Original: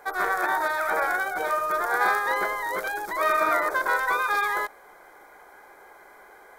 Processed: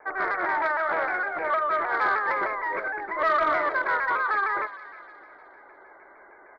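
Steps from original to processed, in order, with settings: rattle on loud lows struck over -45 dBFS, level -18 dBFS; Chebyshev low-pass 2.2 kHz, order 8; bass shelf 96 Hz -7.5 dB; comb 3.2 ms, depth 30%; de-hum 253.7 Hz, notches 36; saturation -14 dBFS, distortion -22 dB; feedback echo behind a high-pass 358 ms, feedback 42%, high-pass 1.6 kHz, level -13 dB; vibrato with a chosen wave saw down 6.5 Hz, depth 100 cents

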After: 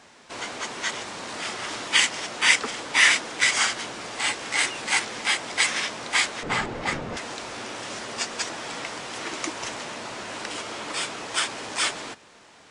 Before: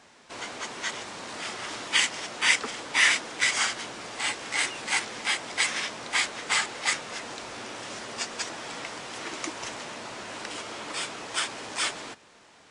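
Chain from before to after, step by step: 6.43–7.17 s: tilt EQ -4.5 dB/octave; trim +3.5 dB

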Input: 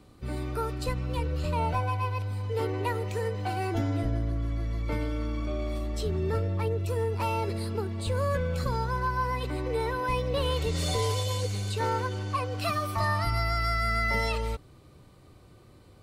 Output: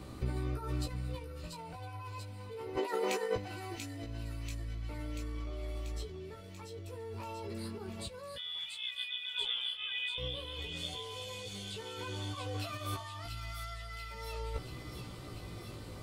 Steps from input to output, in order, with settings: 2.76–3.36 s: Bessel high-pass 350 Hz, order 8; in parallel at +1.5 dB: peak limiter -28 dBFS, peak gain reduction 10.5 dB; on the sum: compressor with a negative ratio -31 dBFS, ratio -0.5; 8.36–10.18 s: frequency inversion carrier 3.5 kHz; on a send: feedback echo behind a high-pass 687 ms, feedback 68%, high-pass 2.7 kHz, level -4 dB; on the sum: chorus 0.35 Hz, delay 15.5 ms, depth 2.2 ms; trim -4 dB

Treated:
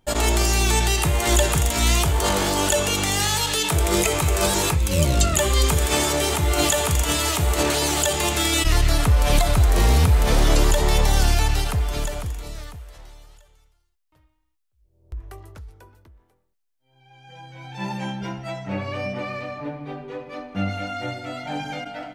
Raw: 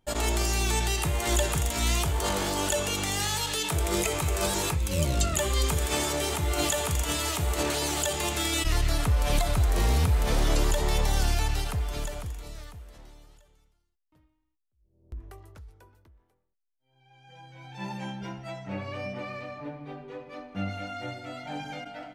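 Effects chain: 12.76–15.32 s: peaking EQ 230 Hz -12 dB 1.3 oct; trim +7 dB

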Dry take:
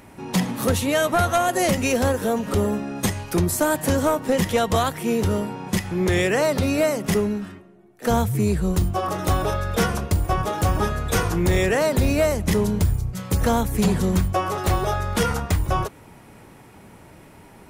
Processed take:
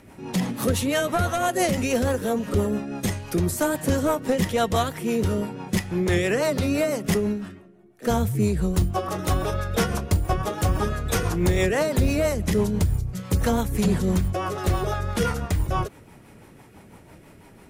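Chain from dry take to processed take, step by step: rotary cabinet horn 6 Hz

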